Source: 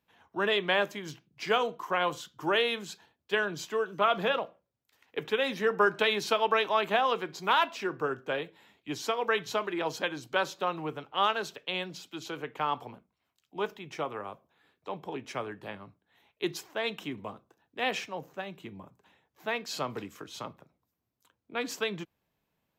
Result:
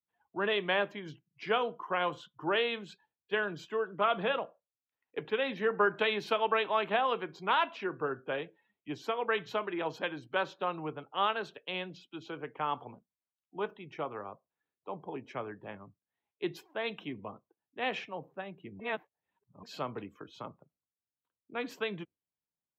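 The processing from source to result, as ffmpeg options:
ffmpeg -i in.wav -filter_complex "[0:a]asplit=3[link_01][link_02][link_03];[link_01]atrim=end=18.802[link_04];[link_02]atrim=start=18.798:end=19.632,asetpts=PTS-STARTPTS,areverse[link_05];[link_03]atrim=start=19.628[link_06];[link_04][link_05]acrossfade=duration=0.004:curve1=hsin:curve2=hsin[link_07];[link_07][link_06]acrossfade=duration=0.004:curve1=hsin:curve2=hsin,adynamicequalizer=threshold=0.01:dfrequency=3100:dqfactor=1:tfrequency=3100:tqfactor=1:attack=5:release=100:ratio=0.375:range=2:mode=boostabove:tftype=bell,afftdn=noise_reduction=20:noise_floor=-50,equalizer=frequency=6700:width=0.68:gain=-14,volume=-2.5dB" out.wav

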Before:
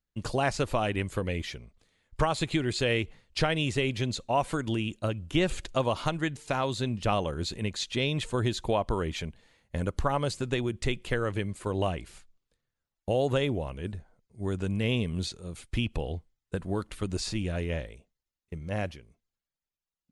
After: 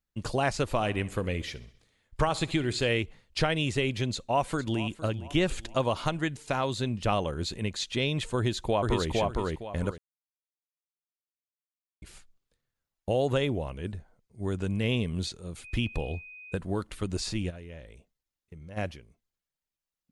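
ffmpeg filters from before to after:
ffmpeg -i in.wav -filter_complex "[0:a]asplit=3[link_01][link_02][link_03];[link_01]afade=type=out:start_time=0.74:duration=0.02[link_04];[link_02]aecho=1:1:66|132|198|264|330:0.112|0.0617|0.0339|0.0187|0.0103,afade=type=in:start_time=0.74:duration=0.02,afade=type=out:start_time=2.88:duration=0.02[link_05];[link_03]afade=type=in:start_time=2.88:duration=0.02[link_06];[link_04][link_05][link_06]amix=inputs=3:normalize=0,asplit=2[link_07][link_08];[link_08]afade=type=in:start_time=4.11:duration=0.01,afade=type=out:start_time=4.81:duration=0.01,aecho=0:1:460|920|1380|1840:0.158489|0.0713202|0.0320941|0.0144423[link_09];[link_07][link_09]amix=inputs=2:normalize=0,asplit=2[link_10][link_11];[link_11]afade=type=in:start_time=8.36:duration=0.01,afade=type=out:start_time=9.09:duration=0.01,aecho=0:1:460|920|1380|1840:0.891251|0.222813|0.0557032|0.0139258[link_12];[link_10][link_12]amix=inputs=2:normalize=0,asettb=1/sr,asplit=3[link_13][link_14][link_15];[link_13]atrim=end=15.644[link_16];[link_14]atrim=start=15.64:end=16.57,asetpts=PTS-STARTPTS,afade=type=in:duration=0.004:curve=qsin,afade=type=out:start_time=0.926:duration=0.004:curve=qsin,aeval=exprs='val(0)+0.00631*sin(2*PI*2500*n/s)':channel_layout=same[link_17];[link_15]atrim=start=16.566[link_18];[link_16][link_17]acrossfade=duration=0.004:curve1=hsin:curve2=qsin[link_19];[link_19][link_18]acrossfade=duration=0.004:curve1=qsin:curve2=hsin,asplit=3[link_20][link_21][link_22];[link_20]afade=type=out:start_time=17.49:duration=0.02[link_23];[link_21]acompressor=threshold=-46dB:ratio=2.5:attack=3.2:release=140:knee=1:detection=peak,afade=type=in:start_time=17.49:duration=0.02,afade=type=out:start_time=18.76:duration=0.02[link_24];[link_22]afade=type=in:start_time=18.76:duration=0.02[link_25];[link_23][link_24][link_25]amix=inputs=3:normalize=0,asplit=3[link_26][link_27][link_28];[link_26]atrim=end=9.98,asetpts=PTS-STARTPTS,afade=type=out:start_time=9.976:duration=0.004:curve=hsin[link_29];[link_27]atrim=start=9.98:end=12.02,asetpts=PTS-STARTPTS,volume=0[link_30];[link_28]atrim=start=12.02,asetpts=PTS-STARTPTS,afade=type=in:duration=0.004:curve=hsin[link_31];[link_29][link_30][link_31]concat=n=3:v=0:a=1" out.wav

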